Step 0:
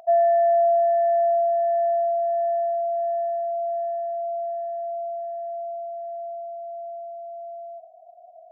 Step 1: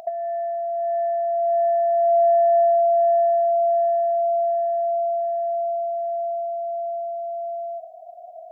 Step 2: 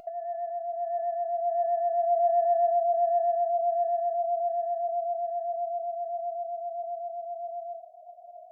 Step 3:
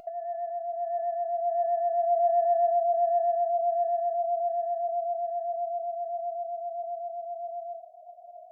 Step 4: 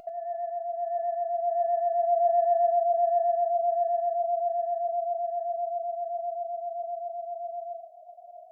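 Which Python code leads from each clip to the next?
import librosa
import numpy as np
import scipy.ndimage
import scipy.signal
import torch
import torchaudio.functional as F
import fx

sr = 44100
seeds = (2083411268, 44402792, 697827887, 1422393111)

y1 = fx.peak_eq(x, sr, hz=1200.0, db=-5.5, octaves=1.7)
y1 = fx.over_compress(y1, sr, threshold_db=-26.0, ratio=-0.5)
y1 = y1 * librosa.db_to_amplitude(8.0)
y2 = fx.vibrato(y1, sr, rate_hz=7.7, depth_cents=41.0)
y2 = fx.comb_fb(y2, sr, f0_hz=700.0, decay_s=0.37, harmonics='all', damping=0.0, mix_pct=70)
y3 = y2
y4 = y3 + 10.0 ** (-12.5 / 20.0) * np.pad(y3, (int(92 * sr / 1000.0), 0))[:len(y3)]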